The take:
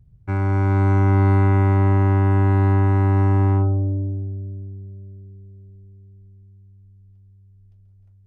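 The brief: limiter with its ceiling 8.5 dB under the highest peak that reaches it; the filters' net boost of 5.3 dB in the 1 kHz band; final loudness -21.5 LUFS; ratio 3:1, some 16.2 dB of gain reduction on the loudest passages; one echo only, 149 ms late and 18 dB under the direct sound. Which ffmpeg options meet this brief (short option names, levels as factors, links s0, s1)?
-af "equalizer=f=1000:t=o:g=6.5,acompressor=threshold=0.0158:ratio=3,alimiter=level_in=2.66:limit=0.0631:level=0:latency=1,volume=0.376,aecho=1:1:149:0.126,volume=10"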